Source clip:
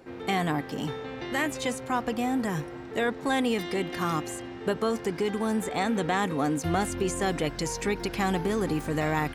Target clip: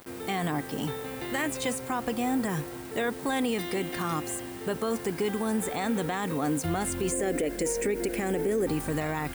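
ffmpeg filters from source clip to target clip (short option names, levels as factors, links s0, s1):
-filter_complex "[0:a]asettb=1/sr,asplit=3[s0][s1][s2];[s0]atrim=end=7.124[s3];[s1]atrim=start=7.12:end=8.67,asetpts=PTS-STARTPTS,afade=t=in:d=0.004:c=qsin,afade=t=out:st=1.546:d=0.004:c=qsin,equalizer=f=125:t=o:w=1:g=-12,equalizer=f=250:t=o:w=1:g=6,equalizer=f=500:t=o:w=1:g=11,equalizer=f=1000:t=o:w=1:g=-11,equalizer=f=2000:t=o:w=1:g=6,equalizer=f=4000:t=o:w=1:g=-10,equalizer=f=8000:t=o:w=1:g=5[s4];[s2]atrim=start=8.666[s5];[s3][s4]acrossfade=d=0.004:c1=hsin:c2=qsin[s6];[s6][s5]acrossfade=d=0.004:c1=qsin:c2=hsin,acrusher=bits=7:mix=0:aa=0.000001,aexciter=amount=1.6:drive=7:freq=8200,alimiter=limit=0.106:level=0:latency=1:release=40"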